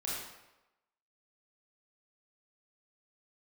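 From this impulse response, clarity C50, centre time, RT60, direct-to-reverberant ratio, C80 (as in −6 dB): −1.0 dB, 76 ms, 1.0 s, −6.5 dB, 2.0 dB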